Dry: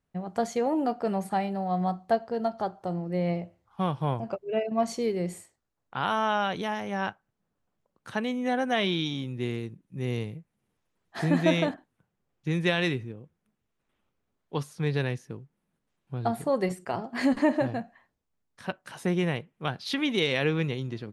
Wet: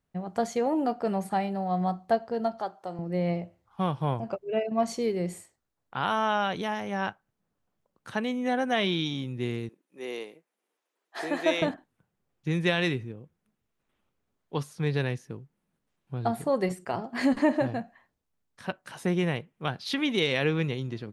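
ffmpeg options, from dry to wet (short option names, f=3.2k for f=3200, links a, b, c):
-filter_complex "[0:a]asettb=1/sr,asplit=3[a][b][c];[a]atrim=end=2.594[d];[b]atrim=start=2.59:end=2.99,asetpts=PTS-STARTPTS,afade=t=in:d=0.004:c=qsin,afade=t=out:st=0.396:d=0.004:c=qsin,highpass=f=590:p=1[e];[c]atrim=start=2.986[f];[d][e]acrossfade=d=0.004:c1=hsin:c2=qsin[g];[g][f]acrossfade=d=0.004:c1=qsin:c2=hsin,asettb=1/sr,asplit=3[h][i][j];[h]atrim=end=9.694[k];[i]atrim=start=9.69:end=11.62,asetpts=PTS-STARTPTS,afade=t=in:d=0.004:c=qsin,afade=t=out:st=1.926:d=0.004:c=qsin,highpass=f=340:w=0.5412,highpass=f=340:w=1.3066[l];[j]atrim=start=11.616[m];[k][l]acrossfade=d=0.004:c1=hsin:c2=qsin[n];[n][m]acrossfade=d=0.004:c1=qsin:c2=hsin"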